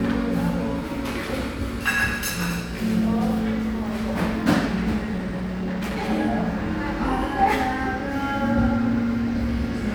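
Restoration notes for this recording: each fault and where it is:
0:05.16–0:06.10: clipping −23.5 dBFS

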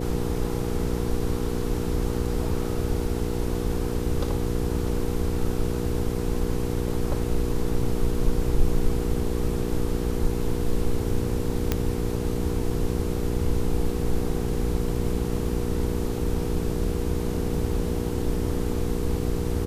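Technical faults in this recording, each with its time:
mains hum 60 Hz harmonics 8 −29 dBFS
0:11.72: click −8 dBFS

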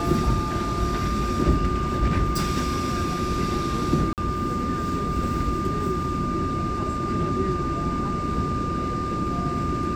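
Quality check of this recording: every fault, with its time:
whistle 1,200 Hz −28 dBFS
0:04.13–0:04.18: drop-out 48 ms

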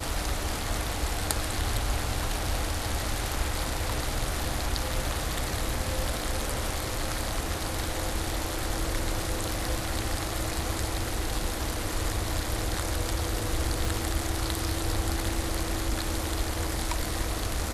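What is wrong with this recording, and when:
0:13.85: click

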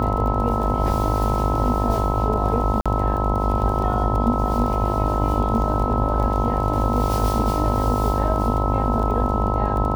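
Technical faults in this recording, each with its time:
mains buzz 50 Hz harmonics 21 −25 dBFS
surface crackle 27 per second −27 dBFS
whistle 1,300 Hz −26 dBFS
0:02.81–0:02.86: drop-out 46 ms

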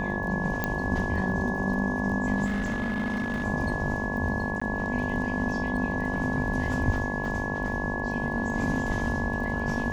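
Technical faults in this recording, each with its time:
mains buzz 50 Hz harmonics 22 −33 dBFS
surface crackle 21 per second −37 dBFS
whistle 1,700 Hz −32 dBFS
0:00.64: click −12 dBFS
0:02.45–0:03.45: clipping −24.5 dBFS
0:04.60–0:04.62: drop-out 15 ms

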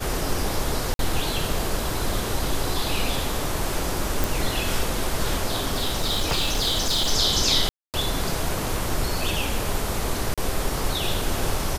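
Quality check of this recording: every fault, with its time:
0:00.94–0:00.99: drop-out 52 ms
0:04.24: click
0:05.62–0:07.12: clipping −18 dBFS
0:07.69–0:07.94: drop-out 248 ms
0:10.34–0:10.38: drop-out 36 ms

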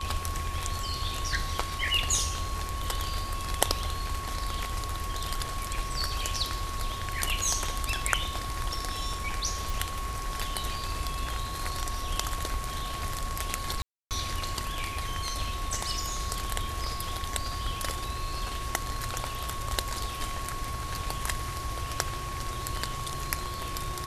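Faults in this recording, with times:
whistle 1,100 Hz −37 dBFS
0:09.70: click
0:13.82–0:14.11: drop-out 288 ms

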